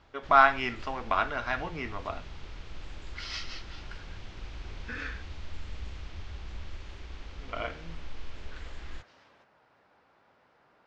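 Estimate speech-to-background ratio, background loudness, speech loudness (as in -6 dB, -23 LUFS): 16.5 dB, -46.0 LUFS, -29.5 LUFS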